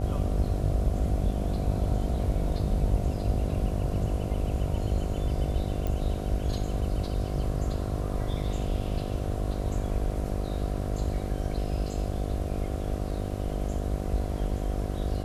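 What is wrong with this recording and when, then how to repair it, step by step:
buzz 50 Hz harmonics 15 -33 dBFS
5.87 s: pop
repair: de-click; de-hum 50 Hz, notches 15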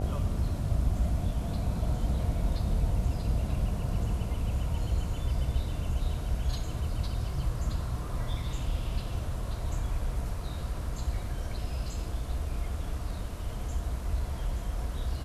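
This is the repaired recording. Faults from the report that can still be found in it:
nothing left

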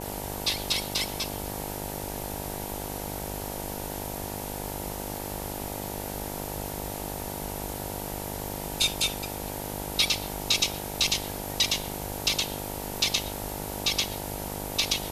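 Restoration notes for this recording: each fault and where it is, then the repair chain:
buzz 50 Hz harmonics 19 -37 dBFS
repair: de-hum 50 Hz, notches 19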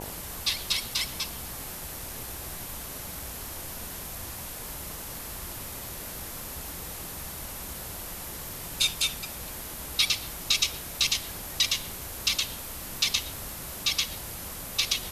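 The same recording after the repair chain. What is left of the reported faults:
nothing left

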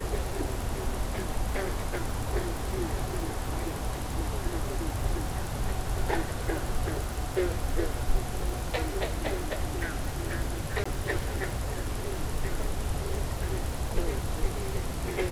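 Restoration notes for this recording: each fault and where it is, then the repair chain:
crackle 55 per s -33 dBFS
10.84–10.86 s: dropout 15 ms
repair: de-click; interpolate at 10.84 s, 15 ms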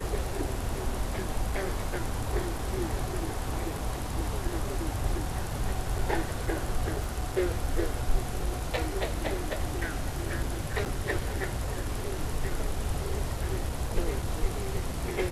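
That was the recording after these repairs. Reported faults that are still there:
nothing left

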